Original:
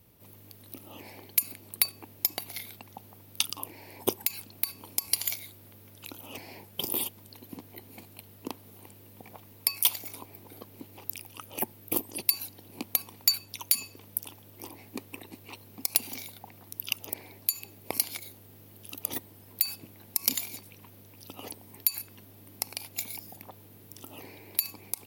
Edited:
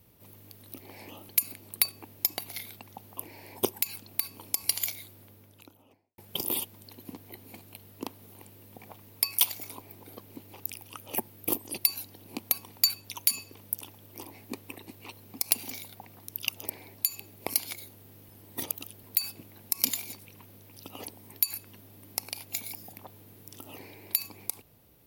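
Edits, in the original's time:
0.80–1.29 s: reverse
3.17–3.61 s: delete
5.50–6.62 s: studio fade out
18.73–19.47 s: reverse

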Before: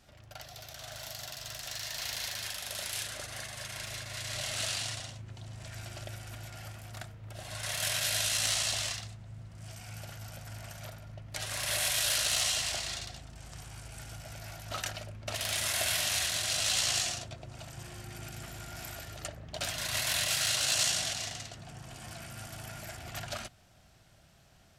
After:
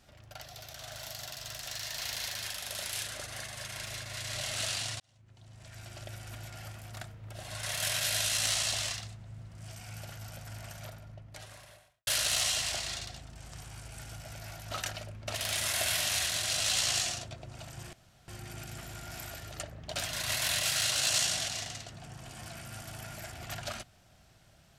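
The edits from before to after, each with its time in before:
5.00–6.31 s: fade in
10.71–12.07 s: studio fade out
17.93 s: insert room tone 0.35 s

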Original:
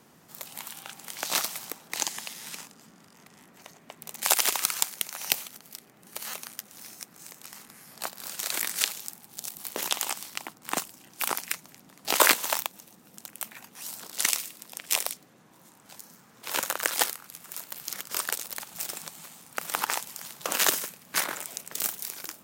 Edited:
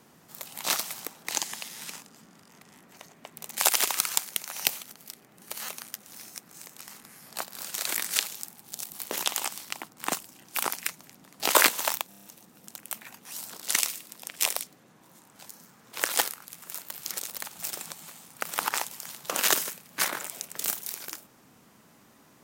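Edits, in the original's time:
0.64–1.29 s: delete
12.74 s: stutter 0.03 s, 6 plays
16.53–16.85 s: delete
17.99–18.33 s: delete

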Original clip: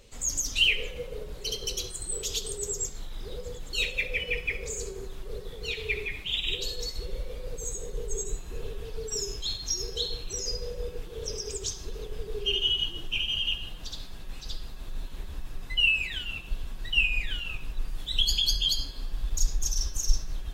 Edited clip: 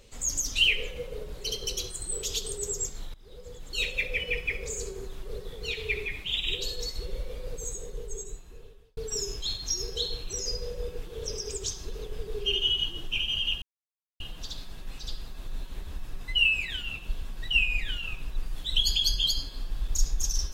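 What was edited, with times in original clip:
3.14–3.92 s: fade in, from -21 dB
7.50–8.97 s: fade out
13.62 s: insert silence 0.58 s

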